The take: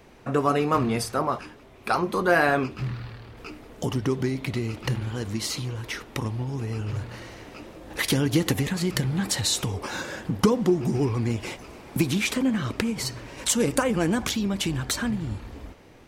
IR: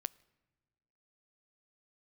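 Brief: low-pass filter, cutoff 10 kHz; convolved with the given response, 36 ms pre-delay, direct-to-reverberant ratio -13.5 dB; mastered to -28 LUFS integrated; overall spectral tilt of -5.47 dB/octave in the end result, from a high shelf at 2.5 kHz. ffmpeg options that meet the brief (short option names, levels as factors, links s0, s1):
-filter_complex "[0:a]lowpass=10000,highshelf=f=2500:g=-4,asplit=2[s0][s1];[1:a]atrim=start_sample=2205,adelay=36[s2];[s1][s2]afir=irnorm=-1:irlink=0,volume=5.96[s3];[s0][s3]amix=inputs=2:normalize=0,volume=0.178"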